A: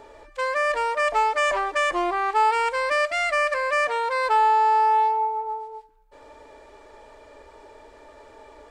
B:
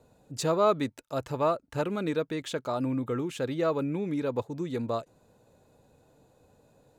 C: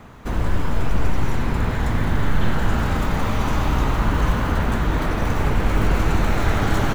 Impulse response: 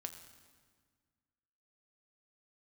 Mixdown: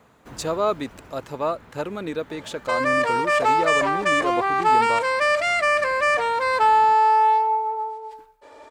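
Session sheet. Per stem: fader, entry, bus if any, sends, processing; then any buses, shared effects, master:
+2.5 dB, 2.30 s, no send, sustainer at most 69 dB/s
+2.0 dB, 0.00 s, no send, dry
-10.5 dB, 0.00 s, no send, auto duck -11 dB, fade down 1.50 s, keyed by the second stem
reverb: off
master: HPF 230 Hz 6 dB/oct

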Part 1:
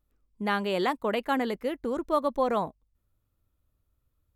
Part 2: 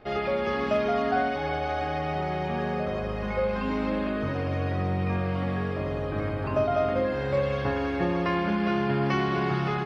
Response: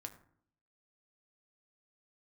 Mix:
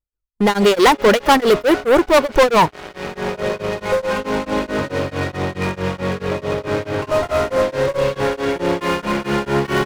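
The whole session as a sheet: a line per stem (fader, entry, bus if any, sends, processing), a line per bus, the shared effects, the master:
-4.5 dB, 0.00 s, no send, no echo send, AGC gain up to 14.5 dB; reverb removal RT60 1.2 s
-6.0 dB, 0.55 s, no send, echo send -10.5 dB, HPF 160 Hz 12 dB/oct; one-sided clip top -31 dBFS; auto duck -9 dB, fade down 1.15 s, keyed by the first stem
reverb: off
echo: echo 0.26 s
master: comb 2.1 ms, depth 37%; sample leveller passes 5; beating tremolo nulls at 4.6 Hz

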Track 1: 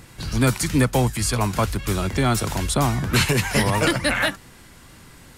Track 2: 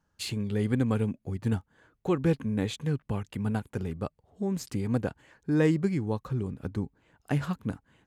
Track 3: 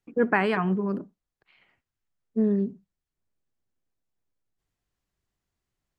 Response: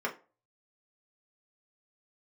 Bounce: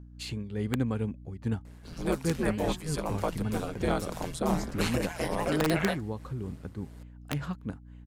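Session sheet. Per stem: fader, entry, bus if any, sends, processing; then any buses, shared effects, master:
-8.5 dB, 1.65 s, no send, ring modulator 83 Hz; bell 560 Hz +9.5 dB 1.4 oct
-0.5 dB, 0.00 s, no send, high shelf 10000 Hz -9 dB; hum 60 Hz, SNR 13 dB; wrapped overs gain 15 dB
-14.5 dB, 2.10 s, no send, tilt +3 dB/oct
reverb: off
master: noise-modulated level, depth 65%

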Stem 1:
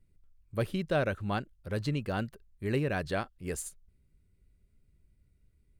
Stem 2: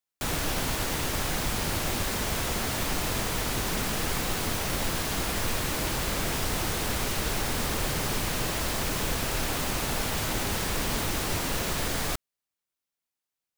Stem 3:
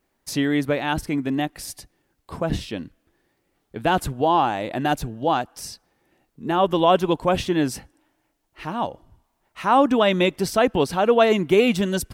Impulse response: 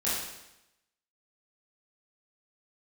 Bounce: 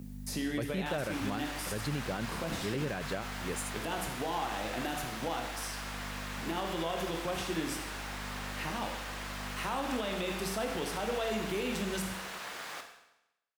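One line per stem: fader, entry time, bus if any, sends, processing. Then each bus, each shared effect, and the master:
-1.0 dB, 0.00 s, no send, HPF 110 Hz 24 dB/oct
-5.5 dB, 0.65 s, send -10 dB, HPF 1300 Hz 12 dB/oct; tilt -4.5 dB/oct
-18.5 dB, 0.00 s, send -8.5 dB, hum 50 Hz, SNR 14 dB; high shelf 4700 Hz +12 dB; three-band squash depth 70%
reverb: on, RT60 0.90 s, pre-delay 17 ms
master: limiter -24 dBFS, peak gain reduction 9 dB

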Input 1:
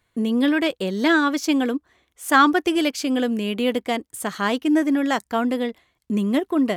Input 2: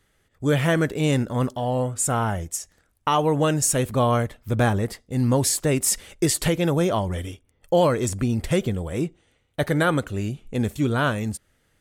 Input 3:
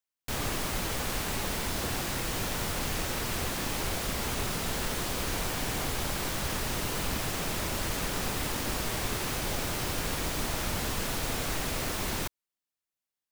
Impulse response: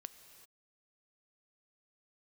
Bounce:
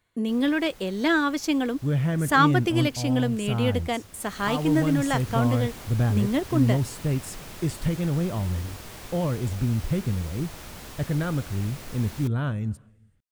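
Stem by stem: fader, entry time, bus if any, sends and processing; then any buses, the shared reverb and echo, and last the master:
-4.0 dB, 0.00 s, no send, dry
-14.0 dB, 1.40 s, send -7 dB, tone controls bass +14 dB, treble -6 dB
4.12 s -19 dB -> 4.44 s -9.5 dB, 0.00 s, no send, dry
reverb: on, pre-delay 3 ms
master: dry

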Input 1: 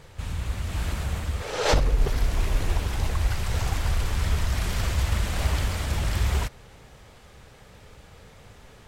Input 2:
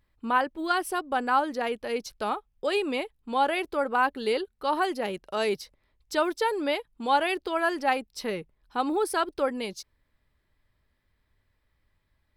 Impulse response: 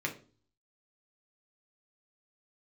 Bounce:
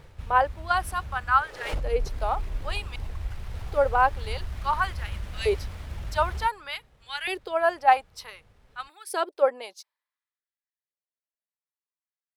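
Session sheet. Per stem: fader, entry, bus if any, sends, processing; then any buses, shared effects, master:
-2.0 dB, 0.00 s, no send, running maximum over 5 samples; auto duck -11 dB, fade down 0.35 s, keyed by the second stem
-3.0 dB, 0.00 s, muted 2.96–3.7, no send, LFO high-pass saw up 0.55 Hz 440–2000 Hz; three-band expander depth 70%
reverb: off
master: low shelf 61 Hz +8.5 dB

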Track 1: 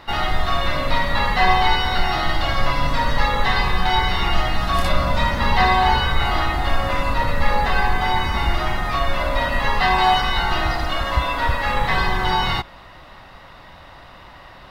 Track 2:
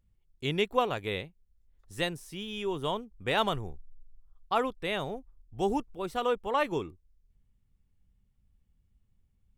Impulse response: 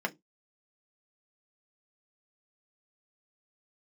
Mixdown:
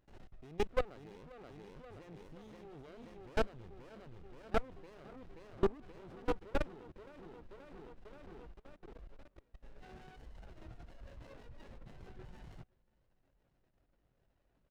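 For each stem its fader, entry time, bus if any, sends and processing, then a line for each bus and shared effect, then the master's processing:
-8.5 dB, 0.00 s, no send, echo send -23.5 dB, chorus voices 6, 0.71 Hz, delay 21 ms, depth 4.8 ms; reverb removal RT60 1.3 s; bell 840 Hz -8.5 dB 0.33 oct; auto duck -20 dB, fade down 0.30 s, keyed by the second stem
+1.0 dB, 0.00 s, no send, echo send -5.5 dB, dry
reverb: off
echo: feedback echo 0.529 s, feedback 53%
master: level quantiser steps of 24 dB; tape spacing loss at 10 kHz 23 dB; running maximum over 33 samples

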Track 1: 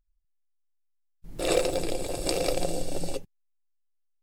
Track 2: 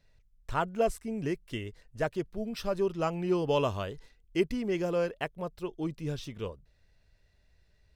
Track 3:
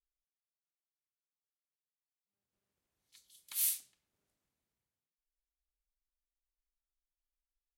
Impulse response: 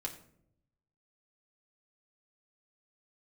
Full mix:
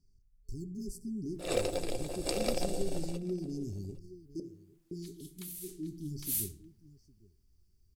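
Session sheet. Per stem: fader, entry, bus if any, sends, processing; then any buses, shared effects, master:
1.24 s -13.5 dB -> 1.7 s -3 dB -> 2.91 s -3 dB -> 3.54 s -15 dB, 0.00 s, no bus, no send, echo send -23.5 dB, upward expander 1.5:1, over -34 dBFS
-8.0 dB, 0.00 s, muted 4.4–4.91, bus A, send -3.5 dB, echo send -15 dB, FFT band-reject 420–4400 Hz
+0.5 dB, 1.90 s, bus A, no send, echo send -7 dB, high shelf 5500 Hz +6.5 dB
bus A: 0.0 dB, vocal rider within 3 dB 0.5 s; limiter -35.5 dBFS, peak gain reduction 20 dB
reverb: on, RT60 0.70 s, pre-delay 4 ms
echo: echo 0.809 s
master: dry

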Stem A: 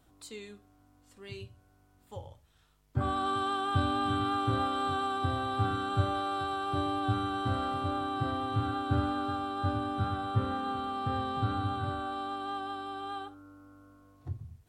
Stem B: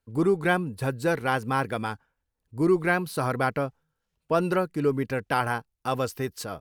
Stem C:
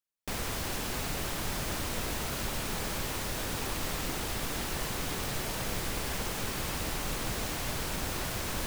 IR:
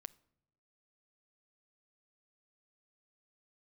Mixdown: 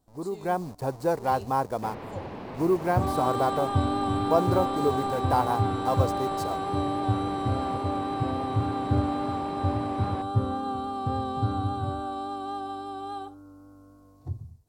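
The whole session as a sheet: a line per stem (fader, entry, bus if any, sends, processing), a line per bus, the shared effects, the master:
-5.5 dB, 0.00 s, no send, vibrato 3.6 Hz 15 cents
-15.0 dB, 0.00 s, no send, level-crossing sampler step -36.5 dBFS; bell 830 Hz +9 dB 1.7 oct
-9.0 dB, 1.55 s, no send, HPF 130 Hz; LPF 2700 Hz 24 dB/oct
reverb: off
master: band shelf 2100 Hz -10 dB; AGC gain up to 10 dB

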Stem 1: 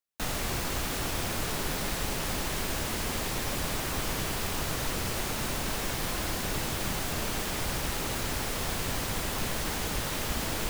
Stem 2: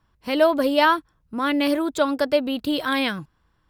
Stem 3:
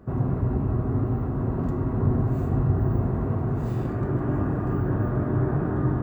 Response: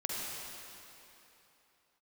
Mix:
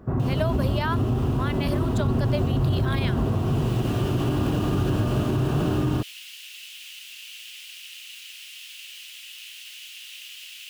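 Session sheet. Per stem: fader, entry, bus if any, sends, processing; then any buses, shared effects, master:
+1.0 dB, 0.00 s, no send, ladder high-pass 2600 Hz, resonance 70%; auto duck -8 dB, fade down 0.30 s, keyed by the second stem
-5.5 dB, 0.00 s, no send, HPF 540 Hz 12 dB/oct
+0.5 dB, 0.00 s, send -9.5 dB, dry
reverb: on, RT60 3.2 s, pre-delay 43 ms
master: limiter -15 dBFS, peak gain reduction 7.5 dB

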